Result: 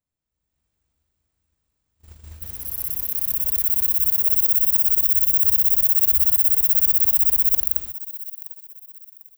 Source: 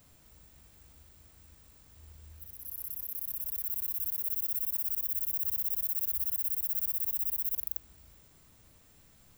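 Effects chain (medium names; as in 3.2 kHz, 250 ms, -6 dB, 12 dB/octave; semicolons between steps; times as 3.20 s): peaking EQ 14 kHz -7 dB 0.54 oct; gate -50 dBFS, range -33 dB; level rider gain up to 11.5 dB; feedback echo behind a high-pass 748 ms, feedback 34%, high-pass 3.1 kHz, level -15.5 dB; trim +4.5 dB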